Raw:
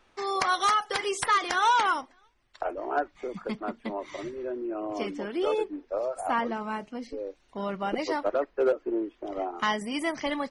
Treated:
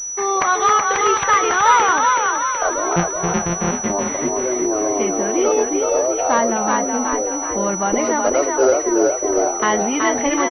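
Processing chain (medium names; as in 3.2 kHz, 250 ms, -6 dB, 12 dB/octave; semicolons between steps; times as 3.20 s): 2.96–3.75 s: sorted samples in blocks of 256 samples; in parallel at -1 dB: peak limiter -26 dBFS, peak gain reduction 11.5 dB; on the sum: frequency-shifting echo 375 ms, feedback 54%, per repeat +37 Hz, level -3 dB; class-D stage that switches slowly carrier 5.9 kHz; trim +6 dB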